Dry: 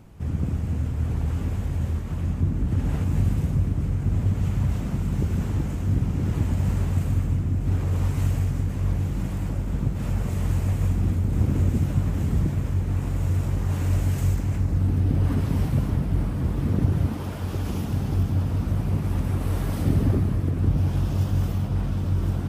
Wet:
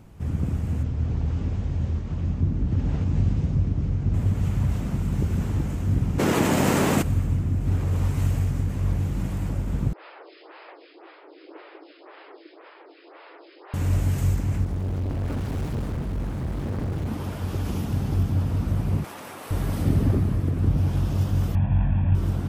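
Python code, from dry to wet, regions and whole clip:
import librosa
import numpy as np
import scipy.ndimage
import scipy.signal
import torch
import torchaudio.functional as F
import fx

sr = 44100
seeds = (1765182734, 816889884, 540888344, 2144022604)

y = fx.chain(x, sr, fx.lowpass(hz=6100.0, slope=24),
    fx.peak_eq(hz=1600.0, db=-4.0, octaves=2.2), at=(0.83, 4.14))
y = fx.spec_clip(y, sr, under_db=20, at=(6.18, 7.01), fade=0.02)
y = fx.highpass(y, sr, hz=120.0, slope=12, at=(6.18, 7.01), fade=0.02)
y = fx.env_flatten(y, sr, amount_pct=50, at=(6.18, 7.01), fade=0.02)
y = fx.chain(y, sr, fx.brickwall_bandpass(low_hz=300.0, high_hz=5200.0),
    fx.low_shelf(hz=450.0, db=-10.5),
    fx.stagger_phaser(hz=1.9), at=(9.93, 13.74))
y = fx.chain(y, sr, fx.peak_eq(hz=140.0, db=-3.0, octaves=2.8),
    fx.overload_stage(gain_db=23.5),
    fx.doppler_dist(depth_ms=0.77), at=(14.64, 17.07))
y = fx.chain(y, sr, fx.highpass(hz=610.0, slope=12),
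    fx.env_flatten(amount_pct=100), at=(19.04, 19.51))
y = fx.chain(y, sr, fx.cvsd(bps=16000),
    fx.lowpass(hz=1800.0, slope=6),
    fx.comb(ms=1.2, depth=0.8), at=(21.55, 22.15))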